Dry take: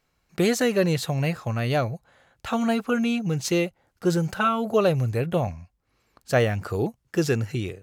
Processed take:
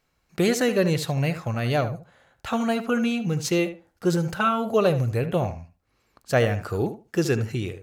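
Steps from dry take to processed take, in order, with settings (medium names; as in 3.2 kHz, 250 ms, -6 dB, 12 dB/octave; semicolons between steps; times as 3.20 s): tape echo 74 ms, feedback 20%, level -10 dB, low-pass 2.3 kHz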